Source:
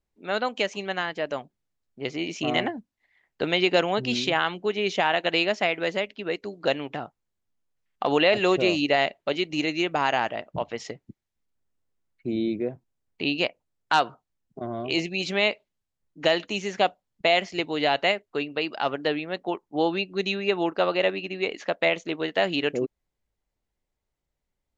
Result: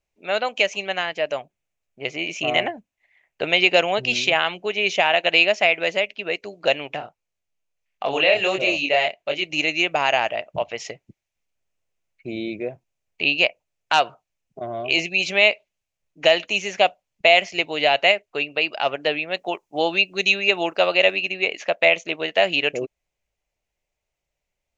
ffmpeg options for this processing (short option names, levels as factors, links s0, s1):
-filter_complex "[0:a]asettb=1/sr,asplit=3[s0][s1][s2];[s0]atrim=end=1.374[s3];[s1]atrim=start=1.37:end=3.53,asetpts=PTS-STARTPTS,afade=t=in:d=0.004:c=qsin,afade=t=out:st=2.156:d=0.004:c=qsin,equalizer=f=4800:w=1.5:g=-5[s4];[s2]atrim=start=3.526[s5];[s3][s4]acrossfade=d=0.004:c1=hsin:c2=qsin[s6];[s6][s5]acrossfade=d=0.004:c1=qsin:c2=hsin,asplit=3[s7][s8][s9];[s7]afade=t=out:st=6.98:d=0.02[s10];[s8]flanger=delay=20:depth=7:speed=1.5,afade=t=in:st=6.98:d=0.02,afade=t=out:st=9.43:d=0.02[s11];[s9]afade=t=in:st=9.43:d=0.02[s12];[s10][s11][s12]amix=inputs=3:normalize=0,asettb=1/sr,asplit=3[s13][s14][s15];[s13]atrim=end=19.314[s16];[s14]atrim=start=19.31:end=21.32,asetpts=PTS-STARTPTS,afade=t=in:d=0.004:c=qsin,afade=t=out:st=2.006:d=0.004:c=qsin,highshelf=f=4700:g=10[s17];[s15]atrim=start=21.316[s18];[s16][s17]acrossfade=d=0.004:c1=hsin:c2=qsin[s19];[s19][s18]acrossfade=d=0.004:c1=qsin:c2=hsin,equalizer=f=250:t=o:w=0.67:g=-5,equalizer=f=630:t=o:w=0.67:g=8,equalizer=f=2500:t=o:w=0.67:g=12,equalizer=f=6300:t=o:w=0.67:g=8,volume=0.841"